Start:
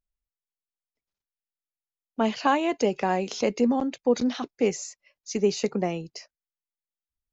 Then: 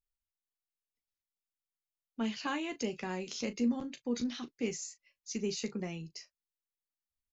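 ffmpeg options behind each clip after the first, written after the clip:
ffmpeg -i in.wav -af "equalizer=frequency=680:width_type=o:width=1.7:gain=-13.5,aecho=1:1:13|38:0.376|0.211,volume=-6dB" out.wav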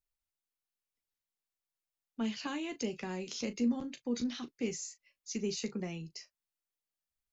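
ffmpeg -i in.wav -filter_complex "[0:a]acrossover=split=470|3000[link_01][link_02][link_03];[link_02]acompressor=threshold=-45dB:ratio=2[link_04];[link_01][link_04][link_03]amix=inputs=3:normalize=0" out.wav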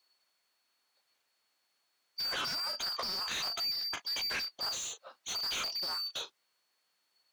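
ffmpeg -i in.wav -filter_complex "[0:a]afftfilt=real='real(if(lt(b,272),68*(eq(floor(b/68),0)*1+eq(floor(b/68),1)*2+eq(floor(b/68),2)*3+eq(floor(b/68),3)*0)+mod(b,68),b),0)':imag='imag(if(lt(b,272),68*(eq(floor(b/68),0)*1+eq(floor(b/68),1)*2+eq(floor(b/68),2)*3+eq(floor(b/68),3)*0)+mod(b,68),b),0)':win_size=2048:overlap=0.75,asplit=2[link_01][link_02];[link_02]highpass=frequency=720:poles=1,volume=29dB,asoftclip=type=tanh:threshold=-22dB[link_03];[link_01][link_03]amix=inputs=2:normalize=0,lowpass=frequency=2600:poles=1,volume=-6dB,volume=-2dB" out.wav

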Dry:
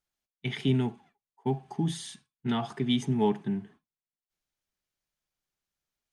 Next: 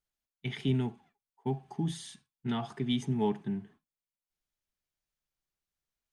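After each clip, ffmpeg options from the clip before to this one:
ffmpeg -i in.wav -af "lowshelf=frequency=78:gain=7,volume=-4.5dB" out.wav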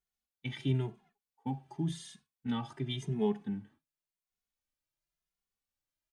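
ffmpeg -i in.wav -filter_complex "[0:a]asplit=2[link_01][link_02];[link_02]adelay=2.4,afreqshift=0.94[link_03];[link_01][link_03]amix=inputs=2:normalize=1" out.wav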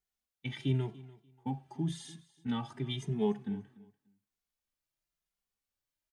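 ffmpeg -i in.wav -af "aecho=1:1:292|584:0.0944|0.0189" out.wav

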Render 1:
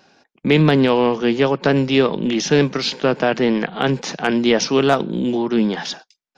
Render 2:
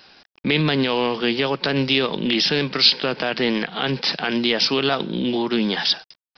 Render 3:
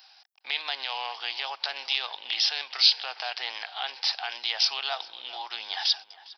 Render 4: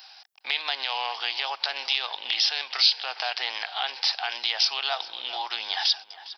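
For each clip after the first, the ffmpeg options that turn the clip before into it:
ffmpeg -i in.wav -af "alimiter=limit=-10.5dB:level=0:latency=1:release=101,crystalizer=i=7:c=0,aresample=11025,acrusher=bits=7:mix=0:aa=0.000001,aresample=44100,volume=-3dB" out.wav
ffmpeg -i in.wav -filter_complex "[0:a]highpass=frequency=770:width_type=q:width=5.8,aderivative,asplit=2[link_01][link_02];[link_02]adelay=406,lowpass=frequency=2500:poles=1,volume=-17dB,asplit=2[link_03][link_04];[link_04]adelay=406,lowpass=frequency=2500:poles=1,volume=0.46,asplit=2[link_05][link_06];[link_06]adelay=406,lowpass=frequency=2500:poles=1,volume=0.46,asplit=2[link_07][link_08];[link_08]adelay=406,lowpass=frequency=2500:poles=1,volume=0.46[link_09];[link_01][link_03][link_05][link_07][link_09]amix=inputs=5:normalize=0" out.wav
ffmpeg -i in.wav -af "acompressor=threshold=-35dB:ratio=1.5,volume=6.5dB" out.wav

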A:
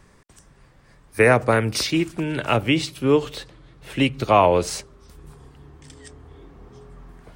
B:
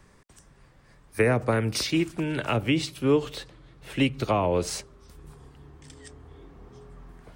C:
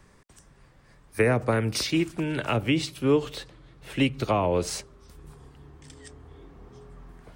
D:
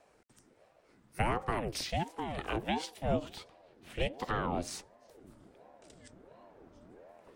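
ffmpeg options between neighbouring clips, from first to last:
ffmpeg -i in.wav -filter_complex "[0:a]acrossover=split=410[link_01][link_02];[link_02]acompressor=threshold=-21dB:ratio=6[link_03];[link_01][link_03]amix=inputs=2:normalize=0,volume=-3dB" out.wav
ffmpeg -i in.wav -af anull out.wav
ffmpeg -i in.wav -af "aeval=exprs='val(0)*sin(2*PI*410*n/s+410*0.6/1.4*sin(2*PI*1.4*n/s))':channel_layout=same,volume=-6.5dB" out.wav

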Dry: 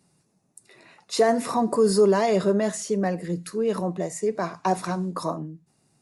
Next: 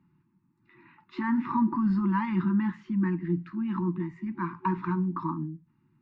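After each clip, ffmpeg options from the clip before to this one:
ffmpeg -i in.wav -af "afftfilt=real='re*(1-between(b*sr/4096,370,840))':imag='im*(1-between(b*sr/4096,370,840))':win_size=4096:overlap=0.75,lowpass=frequency=2800:width=0.5412,lowpass=frequency=2800:width=1.3066,highshelf=frequency=2000:gain=-12,volume=1dB" out.wav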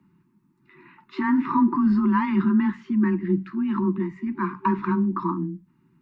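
ffmpeg -i in.wav -af "afreqshift=17,volume=5.5dB" out.wav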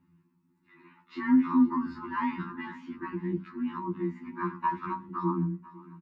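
ffmpeg -i in.wav -af "aecho=1:1:500|1000|1500|2000|2500:0.0944|0.0548|0.0318|0.0184|0.0107,afftfilt=real='re*2*eq(mod(b,4),0)':imag='im*2*eq(mod(b,4),0)':win_size=2048:overlap=0.75,volume=-3dB" out.wav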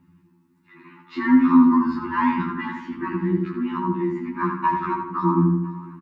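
ffmpeg -i in.wav -filter_complex "[0:a]aphaser=in_gain=1:out_gain=1:delay=3.8:decay=0.2:speed=1.3:type=triangular,asplit=2[link_01][link_02];[link_02]adelay=80,lowpass=frequency=2500:poles=1,volume=-4.5dB,asplit=2[link_03][link_04];[link_04]adelay=80,lowpass=frequency=2500:poles=1,volume=0.52,asplit=2[link_05][link_06];[link_06]adelay=80,lowpass=frequency=2500:poles=1,volume=0.52,asplit=2[link_07][link_08];[link_08]adelay=80,lowpass=frequency=2500:poles=1,volume=0.52,asplit=2[link_09][link_10];[link_10]adelay=80,lowpass=frequency=2500:poles=1,volume=0.52,asplit=2[link_11][link_12];[link_12]adelay=80,lowpass=frequency=2500:poles=1,volume=0.52,asplit=2[link_13][link_14];[link_14]adelay=80,lowpass=frequency=2500:poles=1,volume=0.52[link_15];[link_03][link_05][link_07][link_09][link_11][link_13][link_15]amix=inputs=7:normalize=0[link_16];[link_01][link_16]amix=inputs=2:normalize=0,volume=8dB" out.wav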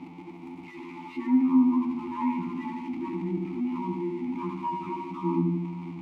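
ffmpeg -i in.wav -filter_complex "[0:a]aeval=exprs='val(0)+0.5*0.0631*sgn(val(0))':channel_layout=same,asubboost=boost=5:cutoff=190,asplit=3[link_01][link_02][link_03];[link_01]bandpass=frequency=300:width_type=q:width=8,volume=0dB[link_04];[link_02]bandpass=frequency=870:width_type=q:width=8,volume=-6dB[link_05];[link_03]bandpass=frequency=2240:width_type=q:width=8,volume=-9dB[link_06];[link_04][link_05][link_06]amix=inputs=3:normalize=0" out.wav

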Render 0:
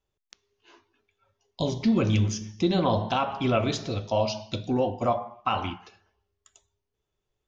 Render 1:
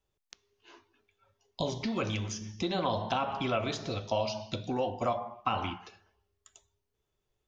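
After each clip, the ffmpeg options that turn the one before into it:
ffmpeg -i in.wav -filter_complex "[0:a]acrossover=split=550|1800[link_01][link_02][link_03];[link_01]acompressor=threshold=-35dB:ratio=4[link_04];[link_02]acompressor=threshold=-30dB:ratio=4[link_05];[link_03]acompressor=threshold=-38dB:ratio=4[link_06];[link_04][link_05][link_06]amix=inputs=3:normalize=0" out.wav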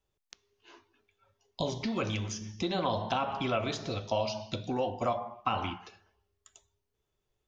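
ffmpeg -i in.wav -af anull out.wav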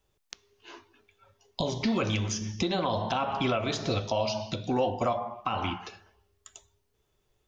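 ffmpeg -i in.wav -af "alimiter=level_in=1dB:limit=-24dB:level=0:latency=1:release=402,volume=-1dB,volume=8dB" out.wav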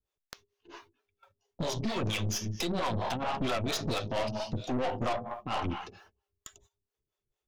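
ffmpeg -i in.wav -filter_complex "[0:a]agate=range=-15dB:threshold=-58dB:ratio=16:detection=peak,acrossover=split=410[link_01][link_02];[link_01]aeval=exprs='val(0)*(1-1/2+1/2*cos(2*PI*4.4*n/s))':channel_layout=same[link_03];[link_02]aeval=exprs='val(0)*(1-1/2-1/2*cos(2*PI*4.4*n/s))':channel_layout=same[link_04];[link_03][link_04]amix=inputs=2:normalize=0,aeval=exprs='(tanh(56.2*val(0)+0.55)-tanh(0.55))/56.2':channel_layout=same,volume=7.5dB" out.wav

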